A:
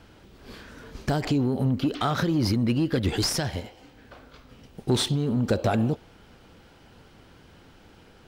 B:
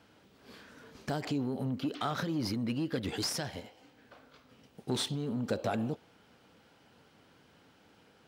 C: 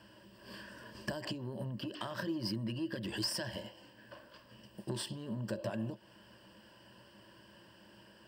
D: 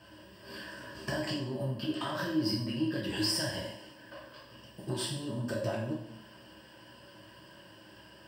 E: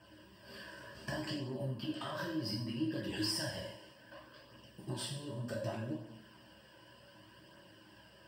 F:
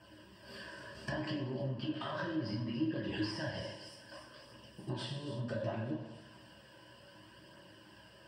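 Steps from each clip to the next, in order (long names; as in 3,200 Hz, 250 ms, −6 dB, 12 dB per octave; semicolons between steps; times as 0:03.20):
Bessel high-pass filter 160 Hz, order 2; notch filter 360 Hz, Q 12; level −7.5 dB
downward compressor 6 to 1, threshold −38 dBFS, peak gain reduction 11 dB; EQ curve with evenly spaced ripples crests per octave 1.3, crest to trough 14 dB; level +1 dB
coupled-rooms reverb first 0.59 s, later 1.6 s, DRR −4.5 dB
flanger 0.66 Hz, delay 0.1 ms, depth 2 ms, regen −53%; level −1.5 dB
echo with a time of its own for lows and highs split 2,900 Hz, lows 124 ms, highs 285 ms, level −14 dB; treble cut that deepens with the level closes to 3,000 Hz, closed at −35 dBFS; level +1.5 dB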